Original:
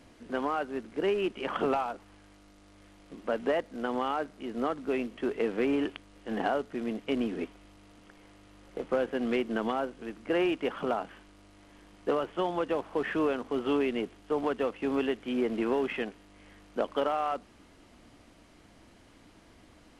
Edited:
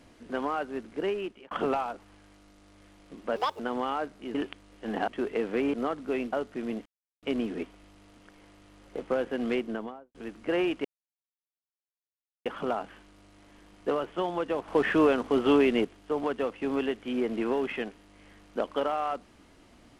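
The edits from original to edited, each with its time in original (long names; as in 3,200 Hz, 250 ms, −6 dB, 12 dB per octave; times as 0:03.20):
0:00.80–0:01.51: fade out equal-power
0:03.36–0:03.78: play speed 178%
0:04.53–0:05.12: swap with 0:05.78–0:06.51
0:07.04: splice in silence 0.37 s
0:09.35–0:09.96: fade out and dull
0:10.66: splice in silence 1.61 s
0:12.88–0:14.05: clip gain +6 dB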